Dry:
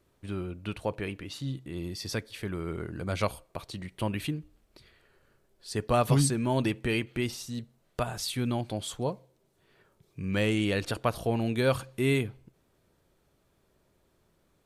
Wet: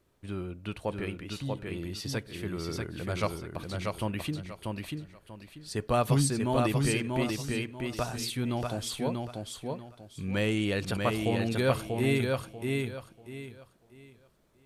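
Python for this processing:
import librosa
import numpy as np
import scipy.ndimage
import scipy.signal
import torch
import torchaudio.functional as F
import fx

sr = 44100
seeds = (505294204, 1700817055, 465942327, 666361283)

y = fx.echo_feedback(x, sr, ms=639, feedback_pct=27, wet_db=-3.5)
y = y * librosa.db_to_amplitude(-1.5)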